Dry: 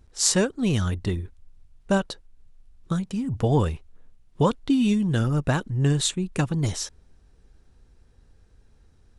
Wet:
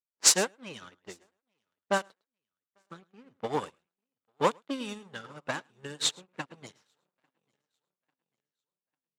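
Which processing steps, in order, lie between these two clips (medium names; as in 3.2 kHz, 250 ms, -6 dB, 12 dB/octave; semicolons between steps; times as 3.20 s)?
partial rectifier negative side -12 dB; level-controlled noise filter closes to 540 Hz, open at -19 dBFS; high-pass 91 Hz 12 dB/octave; treble shelf 9.9 kHz +8.5 dB; band-stop 700 Hz, Q 15; on a send: feedback delay 846 ms, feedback 57%, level -17.5 dB; on the sum: waveshaping leveller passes 2; frequency weighting A; delay 107 ms -13 dB; upward expansion 2.5:1, over -37 dBFS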